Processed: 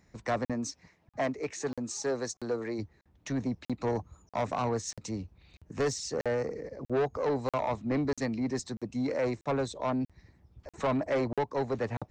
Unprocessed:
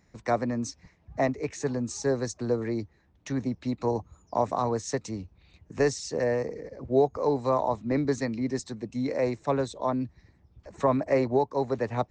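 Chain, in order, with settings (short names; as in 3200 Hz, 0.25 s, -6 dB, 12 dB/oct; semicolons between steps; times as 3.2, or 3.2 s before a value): 0.52–2.78 HPF 190 Hz -> 430 Hz 6 dB/oct; soft clip -23.5 dBFS, distortion -10 dB; crackling interface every 0.64 s, samples 2048, zero, from 0.45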